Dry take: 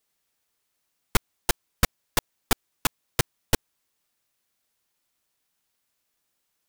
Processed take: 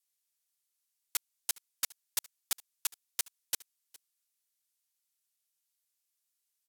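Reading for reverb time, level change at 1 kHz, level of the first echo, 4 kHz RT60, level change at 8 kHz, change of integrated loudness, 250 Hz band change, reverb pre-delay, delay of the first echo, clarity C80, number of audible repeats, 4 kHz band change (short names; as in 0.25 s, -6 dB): none, -20.5 dB, -22.5 dB, none, -4.0 dB, -8.0 dB, -32.0 dB, none, 0.412 s, none, 1, -9.0 dB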